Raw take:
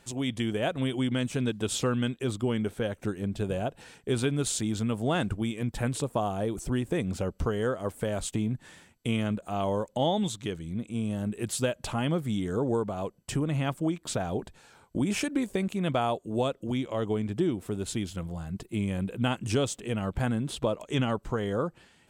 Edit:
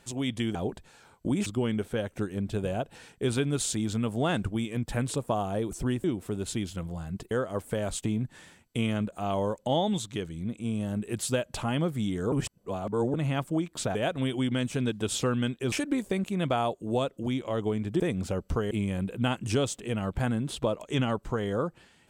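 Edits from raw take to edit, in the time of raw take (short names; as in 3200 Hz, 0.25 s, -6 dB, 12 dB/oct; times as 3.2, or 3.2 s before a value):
0.55–2.32 swap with 14.25–15.16
6.9–7.61 swap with 17.44–18.71
12.62–13.44 reverse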